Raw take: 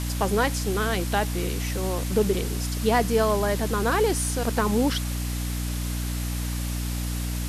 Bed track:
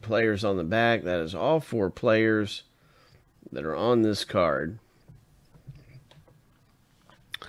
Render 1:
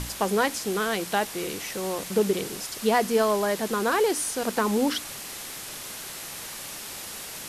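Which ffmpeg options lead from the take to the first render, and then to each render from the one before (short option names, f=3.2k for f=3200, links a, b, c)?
-af "bandreject=f=60:t=h:w=6,bandreject=f=120:t=h:w=6,bandreject=f=180:t=h:w=6,bandreject=f=240:t=h:w=6,bandreject=f=300:t=h:w=6"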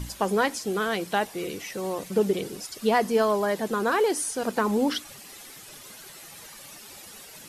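-af "afftdn=nr=11:nf=-38"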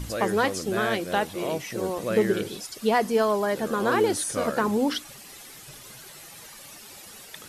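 -filter_complex "[1:a]volume=-7dB[a];[0:a][a]amix=inputs=2:normalize=0"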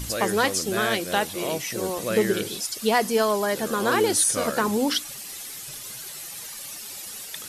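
-af "highshelf=f=2.9k:g=10"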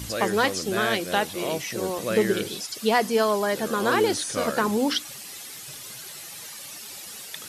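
-filter_complex "[0:a]highpass=67,acrossover=split=5900[a][b];[b]acompressor=threshold=-38dB:ratio=4:attack=1:release=60[c];[a][c]amix=inputs=2:normalize=0"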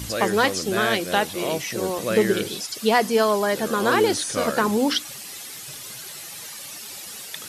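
-af "volume=2.5dB"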